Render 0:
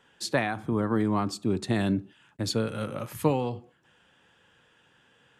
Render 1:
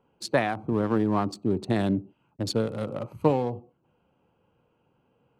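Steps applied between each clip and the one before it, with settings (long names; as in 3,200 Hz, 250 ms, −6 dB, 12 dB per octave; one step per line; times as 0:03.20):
adaptive Wiener filter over 25 samples
dynamic equaliser 640 Hz, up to +4 dB, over −41 dBFS, Q 0.72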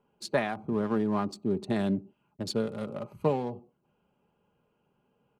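comb filter 4.9 ms, depth 42%
level −4.5 dB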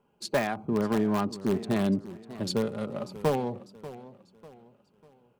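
in parallel at −10.5 dB: wrap-around overflow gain 20 dB
on the sum: feedback echo with a swinging delay time 594 ms, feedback 38%, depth 131 cents, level −16 dB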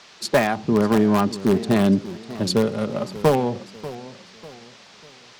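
pitch vibrato 0.72 Hz 8.6 cents
noise in a band 360–5,500 Hz −57 dBFS
level +8.5 dB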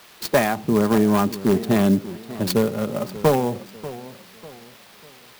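converter with an unsteady clock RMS 0.032 ms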